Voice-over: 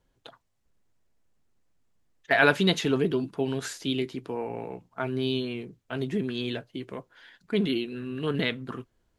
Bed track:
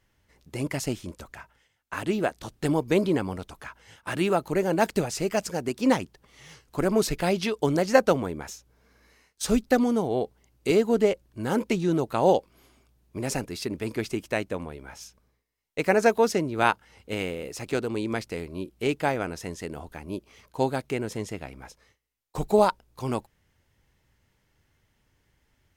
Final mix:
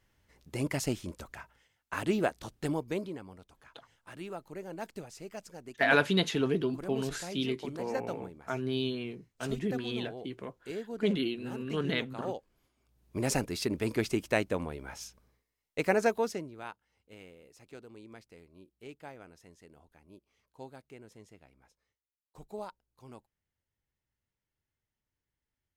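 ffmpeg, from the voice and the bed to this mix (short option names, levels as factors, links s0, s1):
-filter_complex "[0:a]adelay=3500,volume=0.631[s0];[1:a]volume=5.31,afade=t=out:st=2.19:d=0.96:silence=0.177828,afade=t=in:st=12.76:d=0.4:silence=0.141254,afade=t=out:st=15.34:d=1.28:silence=0.0891251[s1];[s0][s1]amix=inputs=2:normalize=0"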